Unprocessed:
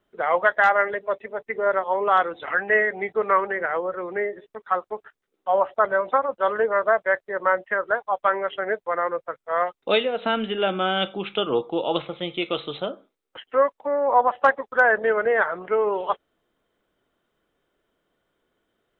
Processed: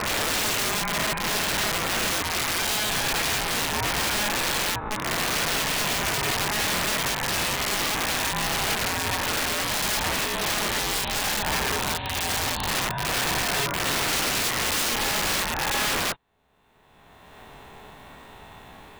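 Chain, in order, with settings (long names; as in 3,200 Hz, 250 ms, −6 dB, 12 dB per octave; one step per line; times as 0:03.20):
peak hold with a rise ahead of every peak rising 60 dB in 2.01 s
camcorder AGC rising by 23 dB per second
0:04.47–0:05.54: flat-topped bell 2,600 Hz +9.5 dB 1.1 octaves
ring modulation 420 Hz
wrap-around overflow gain 16.5 dB
level −2.5 dB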